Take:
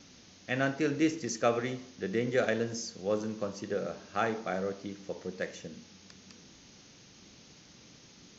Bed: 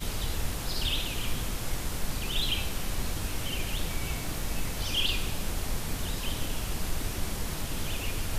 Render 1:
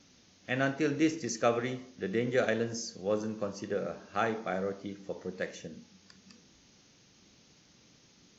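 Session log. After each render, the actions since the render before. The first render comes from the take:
noise reduction from a noise print 6 dB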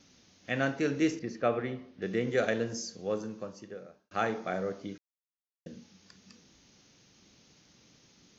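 0:01.19–0:02.02: high-frequency loss of the air 280 metres
0:02.88–0:04.11: fade out
0:04.98–0:05.66: silence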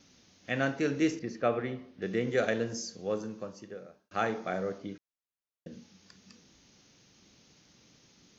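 0:04.78–0:05.72: low-pass filter 4,000 Hz 6 dB per octave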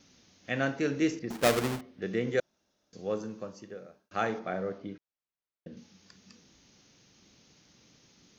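0:01.30–0:01.81: each half-wave held at its own peak
0:02.40–0:02.93: fill with room tone
0:04.39–0:05.77: high-frequency loss of the air 150 metres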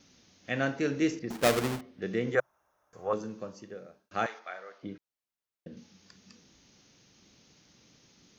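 0:02.35–0:03.13: drawn EQ curve 130 Hz 0 dB, 210 Hz −13 dB, 1,100 Hz +14 dB, 4,400 Hz −15 dB, 10,000 Hz +6 dB
0:04.26–0:04.83: high-pass filter 1,100 Hz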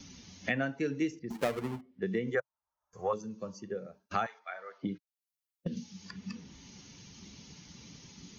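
spectral dynamics exaggerated over time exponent 1.5
multiband upward and downward compressor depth 100%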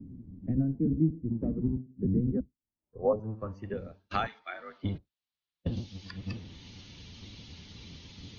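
sub-octave generator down 1 octave, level +3 dB
low-pass filter sweep 260 Hz → 3,700 Hz, 0:02.74–0:03.84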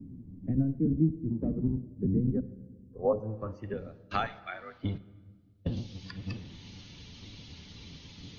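rectangular room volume 1,700 cubic metres, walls mixed, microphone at 0.32 metres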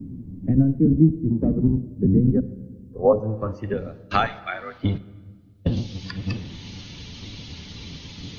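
level +10 dB

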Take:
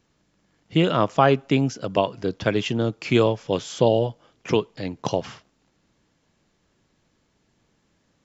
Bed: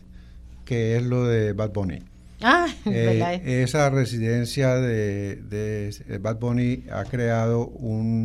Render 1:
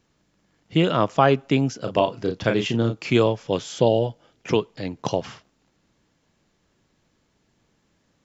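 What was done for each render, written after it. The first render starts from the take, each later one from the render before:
0:01.79–0:03.10: double-tracking delay 34 ms −6.5 dB
0:03.70–0:04.50: notch filter 1,100 Hz, Q 5.9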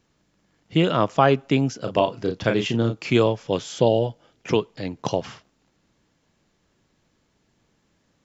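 no processing that can be heard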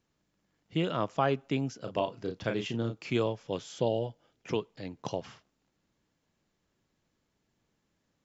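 level −10.5 dB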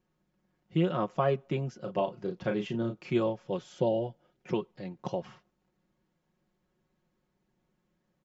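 high-shelf EQ 2,500 Hz −11.5 dB
comb filter 5.5 ms, depth 72%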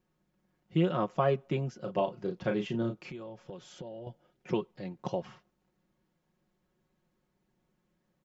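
0:03.01–0:04.07: downward compressor 12 to 1, threshold −39 dBFS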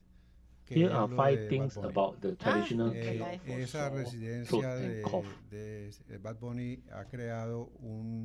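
mix in bed −16 dB

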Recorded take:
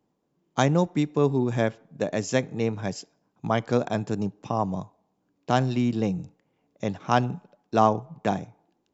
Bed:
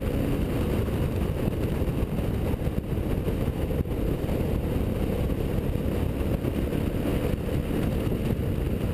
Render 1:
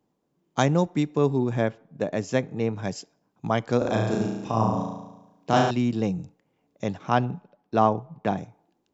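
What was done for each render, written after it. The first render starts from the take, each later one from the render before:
0:01.49–0:02.76: high-shelf EQ 4,300 Hz −9.5 dB
0:03.78–0:05.71: flutter between parallel walls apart 6.1 metres, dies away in 1 s
0:07.09–0:08.38: high-frequency loss of the air 140 metres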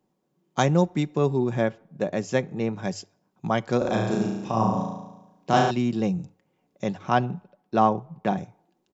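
mains-hum notches 50/100 Hz
comb filter 5.4 ms, depth 32%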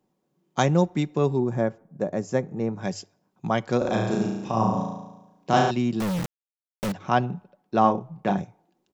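0:01.40–0:02.81: parametric band 3,100 Hz −13 dB 1.3 octaves
0:06.00–0:06.92: log-companded quantiser 2 bits
0:07.81–0:08.42: double-tracking delay 31 ms −6 dB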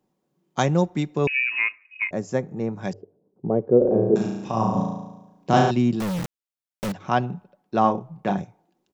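0:01.27–0:02.11: voice inversion scrambler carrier 2,700 Hz
0:02.93–0:04.16: low-pass with resonance 440 Hz, resonance Q 4.8
0:04.75–0:05.96: low-shelf EQ 470 Hz +5.5 dB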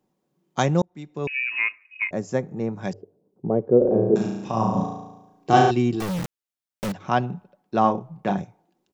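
0:00.82–0:01.68: fade in
0:04.83–0:06.09: comb filter 2.6 ms, depth 59%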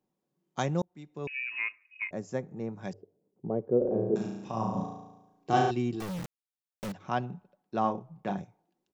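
level −9 dB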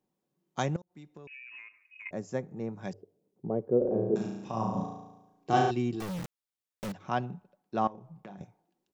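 0:00.76–0:02.06: downward compressor 20 to 1, threshold −43 dBFS
0:07.87–0:08.41: downward compressor, threshold −43 dBFS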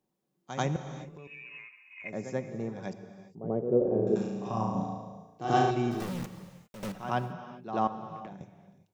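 backwards echo 88 ms −10 dB
reverb whose tail is shaped and stops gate 430 ms flat, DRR 9.5 dB

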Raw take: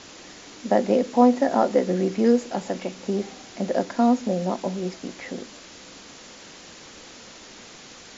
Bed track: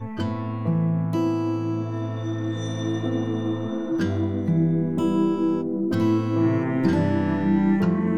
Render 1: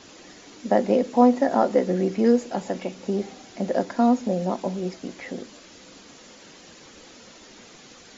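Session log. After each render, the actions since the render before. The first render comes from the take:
broadband denoise 6 dB, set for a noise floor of −45 dBFS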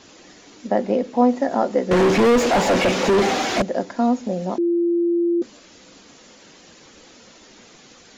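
0:00.67–0:01.29: high-frequency loss of the air 63 metres
0:01.91–0:03.62: mid-hump overdrive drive 38 dB, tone 2,000 Hz, clips at −8.5 dBFS
0:04.58–0:05.42: beep over 343 Hz −16 dBFS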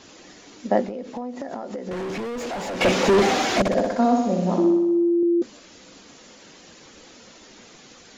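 0:00.86–0:02.81: downward compressor 20 to 1, threshold −27 dBFS
0:03.59–0:05.23: flutter between parallel walls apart 10.6 metres, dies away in 1 s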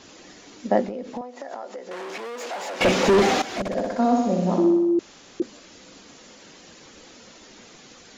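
0:01.21–0:02.81: high-pass filter 510 Hz
0:03.42–0:04.20: fade in, from −13 dB
0:04.99–0:05.40: fill with room tone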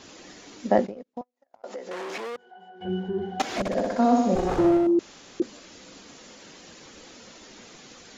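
0:00.78–0:01.64: noise gate −31 dBFS, range −43 dB
0:02.36–0:03.40: resonances in every octave F#, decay 0.31 s
0:04.35–0:04.87: lower of the sound and its delayed copy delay 2.4 ms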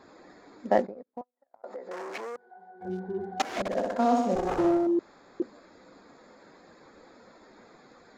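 adaptive Wiener filter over 15 samples
low-shelf EQ 310 Hz −9.5 dB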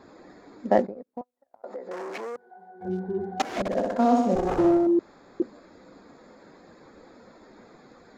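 low-shelf EQ 500 Hz +6 dB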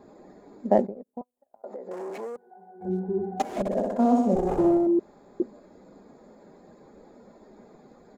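flat-topped bell 2,600 Hz −9 dB 2.7 octaves
comb filter 4.9 ms, depth 30%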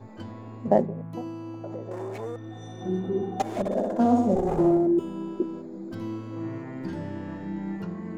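mix in bed track −13 dB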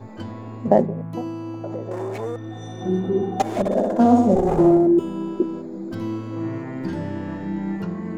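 level +6 dB
brickwall limiter −3 dBFS, peak gain reduction 2 dB

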